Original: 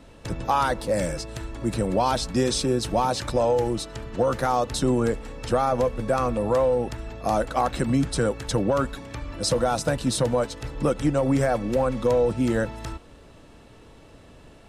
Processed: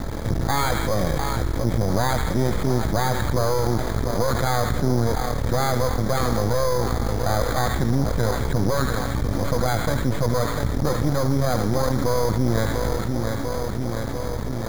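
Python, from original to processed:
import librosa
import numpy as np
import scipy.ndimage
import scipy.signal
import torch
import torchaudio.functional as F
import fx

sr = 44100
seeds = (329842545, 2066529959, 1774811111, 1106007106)

y = fx.echo_feedback(x, sr, ms=696, feedback_pct=48, wet_db=-13.0)
y = np.maximum(y, 0.0)
y = scipy.signal.sosfilt(scipy.signal.butter(12, 2300.0, 'lowpass', fs=sr, output='sos'), y)
y = fx.echo_wet_highpass(y, sr, ms=77, feedback_pct=59, hz=1400.0, wet_db=-6.5)
y = np.repeat(y[::8], 8)[:len(y)]
y = fx.peak_eq(y, sr, hz=80.0, db=7.0, octaves=2.5)
y = fx.env_flatten(y, sr, amount_pct=70)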